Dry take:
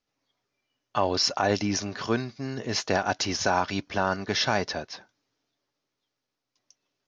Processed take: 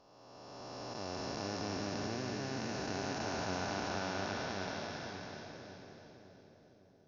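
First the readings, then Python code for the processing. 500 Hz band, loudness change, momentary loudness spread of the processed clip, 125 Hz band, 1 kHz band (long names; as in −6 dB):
−11.0 dB, −12.5 dB, 17 LU, −9.0 dB, −12.0 dB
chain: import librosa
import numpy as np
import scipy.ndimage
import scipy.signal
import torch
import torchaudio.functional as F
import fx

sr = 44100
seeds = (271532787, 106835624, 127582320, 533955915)

y = fx.spec_blur(x, sr, span_ms=1200.0)
y = fx.echo_split(y, sr, split_hz=600.0, low_ms=557, high_ms=325, feedback_pct=52, wet_db=-5.0)
y = y * librosa.db_to_amplitude(-7.0)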